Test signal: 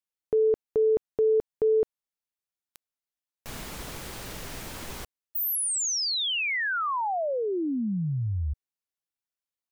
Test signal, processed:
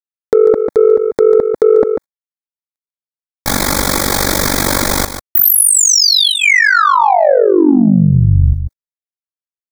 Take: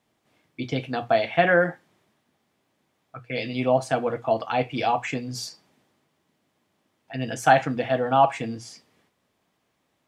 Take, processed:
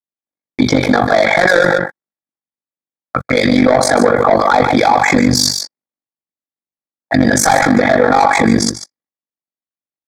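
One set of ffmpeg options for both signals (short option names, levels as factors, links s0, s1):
-filter_complex "[0:a]agate=range=0.00112:threshold=0.00891:ratio=16:release=70:detection=rms,lowshelf=f=60:g=-9.5,aecho=1:1:3.6:0.35,adynamicequalizer=threshold=0.0158:dfrequency=1400:dqfactor=0.91:tfrequency=1400:tqfactor=0.91:attack=5:release=100:ratio=0.375:range=2.5:mode=boostabove:tftype=bell,asplit=2[s0][s1];[s1]acompressor=threshold=0.0316:ratio=6:attack=2:release=60:knee=1:detection=peak,volume=1.26[s2];[s0][s2]amix=inputs=2:normalize=0,asoftclip=type=tanh:threshold=0.133,tremolo=f=48:d=0.919,asuperstop=centerf=2800:order=4:qfactor=2.5,aecho=1:1:144:0.266,alimiter=level_in=16.8:limit=0.891:release=50:level=0:latency=1,volume=0.891"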